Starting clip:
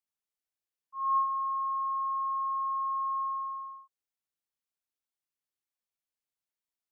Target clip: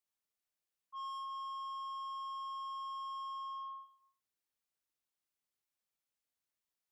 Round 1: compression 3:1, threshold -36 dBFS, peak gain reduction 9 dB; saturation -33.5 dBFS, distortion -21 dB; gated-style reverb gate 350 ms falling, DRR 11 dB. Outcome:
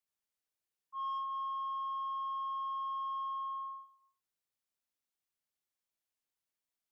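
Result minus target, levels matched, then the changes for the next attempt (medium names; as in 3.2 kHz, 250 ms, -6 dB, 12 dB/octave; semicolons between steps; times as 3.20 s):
saturation: distortion -9 dB
change: saturation -41.5 dBFS, distortion -12 dB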